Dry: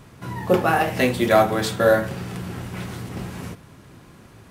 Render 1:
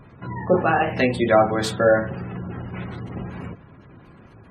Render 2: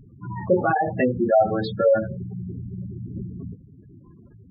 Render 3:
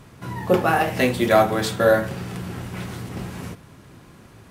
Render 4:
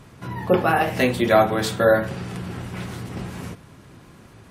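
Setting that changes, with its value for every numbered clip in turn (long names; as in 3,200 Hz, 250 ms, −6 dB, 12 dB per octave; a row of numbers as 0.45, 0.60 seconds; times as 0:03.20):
gate on every frequency bin, under each frame's peak: −25, −10, −55, −40 decibels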